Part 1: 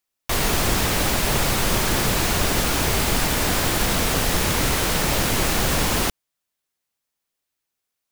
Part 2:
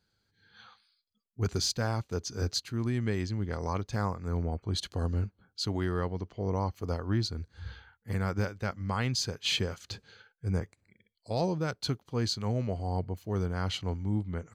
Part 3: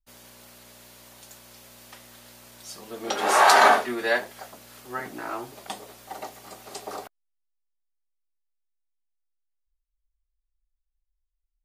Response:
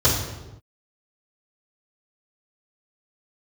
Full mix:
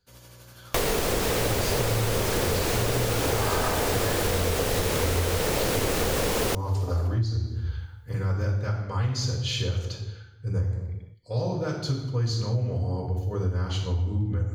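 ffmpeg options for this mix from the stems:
-filter_complex "[0:a]equalizer=f=470:w=2.3:g=11.5,adelay=450,volume=2dB[a];[1:a]lowshelf=f=460:g=-5.5,volume=-0.5dB,asplit=2[b][c];[c]volume=-16.5dB[d];[2:a]volume=-3dB,asplit=2[e][f];[f]volume=-20dB[g];[b][e]amix=inputs=2:normalize=0,tremolo=f=12:d=0.63,alimiter=level_in=8dB:limit=-24dB:level=0:latency=1,volume=-8dB,volume=0dB[h];[3:a]atrim=start_sample=2205[i];[d][g]amix=inputs=2:normalize=0[j];[j][i]afir=irnorm=-1:irlink=0[k];[a][h][k]amix=inputs=3:normalize=0,acompressor=threshold=-22dB:ratio=6"

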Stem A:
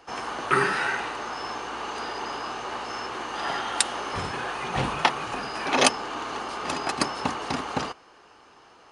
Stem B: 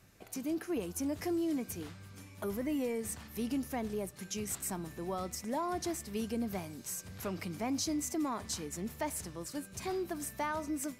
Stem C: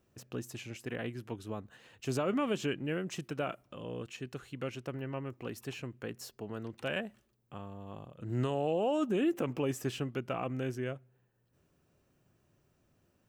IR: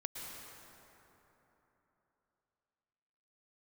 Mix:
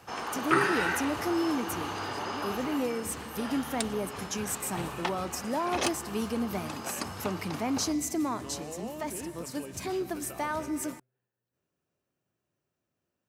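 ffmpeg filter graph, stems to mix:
-filter_complex "[0:a]asoftclip=type=hard:threshold=-9dB,volume=-3dB,afade=t=out:st=2.53:d=0.49:silence=0.398107[a];[1:a]volume=3dB,asplit=2[b][c];[c]volume=-11.5dB[d];[2:a]lowshelf=f=180:g=-8.5,volume=-9.5dB,asplit=2[e][f];[f]apad=whole_len=484943[g];[b][g]sidechaincompress=threshold=-46dB:ratio=8:attack=46:release=111[h];[3:a]atrim=start_sample=2205[i];[d][i]afir=irnorm=-1:irlink=0[j];[a][h][e][j]amix=inputs=4:normalize=0,highpass=55"

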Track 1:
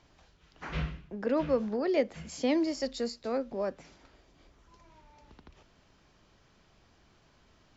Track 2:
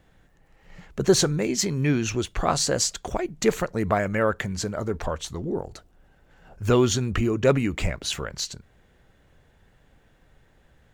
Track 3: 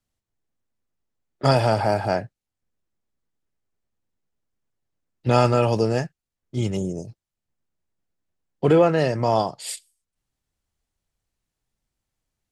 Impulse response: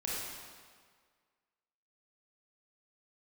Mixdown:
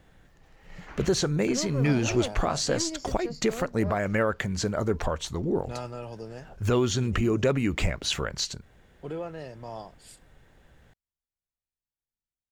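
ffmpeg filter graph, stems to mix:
-filter_complex "[0:a]aeval=exprs='(tanh(15.8*val(0)+0.45)-tanh(0.45))/15.8':c=same,adelay=250,volume=-3.5dB[a];[1:a]alimiter=limit=-16dB:level=0:latency=1:release=251,volume=1.5dB[b];[2:a]adelay=400,volume=-19dB[c];[a][b][c]amix=inputs=3:normalize=0,acrossover=split=7000[d][e];[e]acompressor=threshold=-43dB:ratio=4:attack=1:release=60[f];[d][f]amix=inputs=2:normalize=0"

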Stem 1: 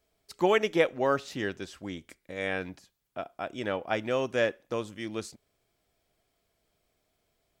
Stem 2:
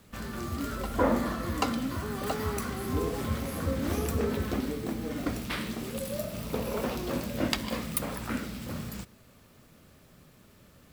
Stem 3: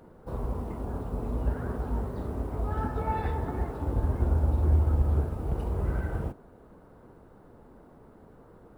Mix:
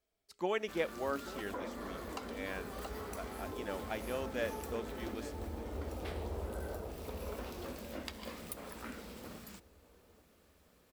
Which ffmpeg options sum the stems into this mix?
-filter_complex "[0:a]volume=-10.5dB,asplit=3[a][b][c];[b]volume=-16dB[d];[1:a]adelay=550,volume=-8.5dB[e];[2:a]equalizer=f=520:w=0.91:g=7.5,adelay=600,volume=-3.5dB,asplit=2[f][g];[g]volume=-17dB[h];[c]apad=whole_len=413621[i];[f][i]sidechaincompress=threshold=-56dB:ratio=8:attack=16:release=682[j];[e][j]amix=inputs=2:normalize=0,lowshelf=f=180:g=-9,acompressor=threshold=-41dB:ratio=3,volume=0dB[k];[d][h]amix=inputs=2:normalize=0,aecho=0:1:835|1670|2505|3340|4175|5010:1|0.46|0.212|0.0973|0.0448|0.0206[l];[a][k][l]amix=inputs=3:normalize=0,equalizer=f=130:t=o:w=0.28:g=-14.5"

